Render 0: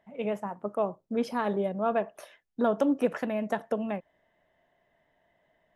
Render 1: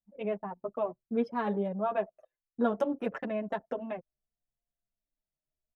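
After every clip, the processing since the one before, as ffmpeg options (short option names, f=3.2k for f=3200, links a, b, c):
-filter_complex "[0:a]anlmdn=1.58,asplit=2[a][b];[b]adelay=6.9,afreqshift=-0.63[c];[a][c]amix=inputs=2:normalize=1"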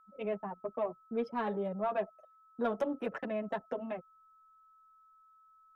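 -filter_complex "[0:a]acrossover=split=290|1800[a][b][c];[a]alimiter=level_in=13dB:limit=-24dB:level=0:latency=1,volume=-13dB[d];[d][b][c]amix=inputs=3:normalize=0,aeval=exprs='val(0)+0.00112*sin(2*PI*1300*n/s)':c=same,asoftclip=type=tanh:threshold=-20.5dB,volume=-1.5dB"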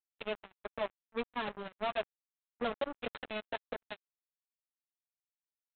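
-af "lowpass=f=2.9k:t=q:w=3.6,lowshelf=f=120:g=-9.5,aresample=8000,acrusher=bits=4:mix=0:aa=0.5,aresample=44100,volume=-3dB"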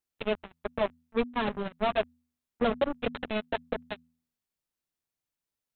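-af "lowshelf=f=380:g=9.5,bandreject=f=81.41:t=h:w=4,bandreject=f=162.82:t=h:w=4,bandreject=f=244.23:t=h:w=4,volume=5dB"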